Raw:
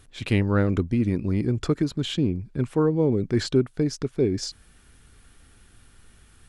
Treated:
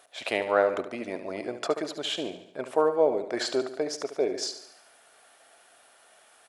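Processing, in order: resonant high-pass 650 Hz, resonance Q 6; feedback delay 72 ms, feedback 52%, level -11 dB

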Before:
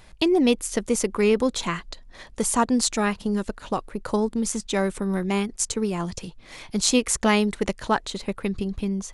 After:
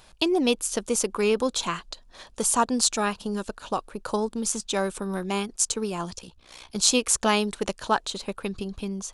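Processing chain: peaking EQ 2 kHz -10.5 dB 0.34 oct; 6.17–6.76 s: AM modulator 62 Hz, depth 65%; bass shelf 420 Hz -9.5 dB; trim +2 dB

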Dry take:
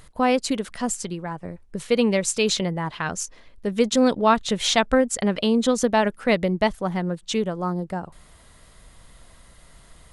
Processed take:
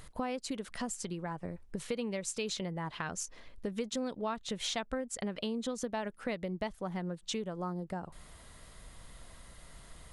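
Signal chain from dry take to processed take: compression 4:1, threshold -33 dBFS, peak gain reduction 17.5 dB; trim -2.5 dB

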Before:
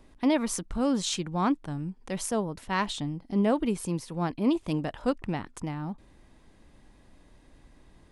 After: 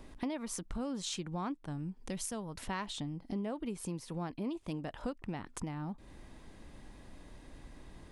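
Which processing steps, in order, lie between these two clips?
2.00–2.59 s: peaking EQ 1.4 kHz -> 270 Hz -8.5 dB 2.8 oct; compression 5:1, threshold -41 dBFS, peak gain reduction 19 dB; trim +4 dB

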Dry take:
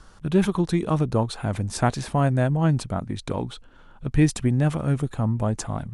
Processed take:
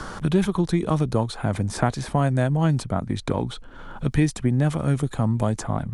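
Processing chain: band-stop 2.7 kHz, Q 14; three bands compressed up and down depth 70%

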